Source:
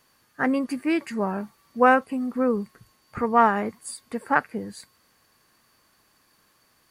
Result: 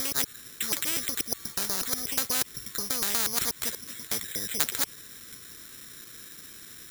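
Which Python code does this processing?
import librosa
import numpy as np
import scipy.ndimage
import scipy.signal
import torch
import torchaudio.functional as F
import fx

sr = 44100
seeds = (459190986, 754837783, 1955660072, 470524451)

y = fx.block_reorder(x, sr, ms=121.0, group=5)
y = fx.band_shelf(y, sr, hz=810.0, db=-12.5, octaves=1.2)
y = (np.kron(scipy.signal.resample_poly(y, 1, 8), np.eye(8)[0]) * 8)[:len(y)]
y = fx.spectral_comp(y, sr, ratio=4.0)
y = y * librosa.db_to_amplitude(-10.5)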